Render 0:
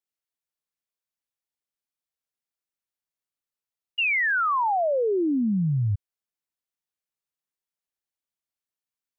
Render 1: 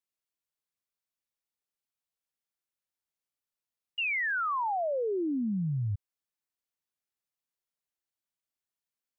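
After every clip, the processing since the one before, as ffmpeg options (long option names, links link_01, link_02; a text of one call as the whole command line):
ffmpeg -i in.wav -af "alimiter=level_in=1dB:limit=-24dB:level=0:latency=1,volume=-1dB,volume=-2dB" out.wav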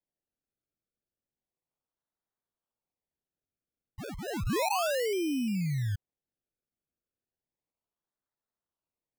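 ffmpeg -i in.wav -af "highshelf=frequency=1500:width_type=q:width=1.5:gain=-7.5,acrusher=samples=31:mix=1:aa=0.000001:lfo=1:lforange=31:lforate=0.33" out.wav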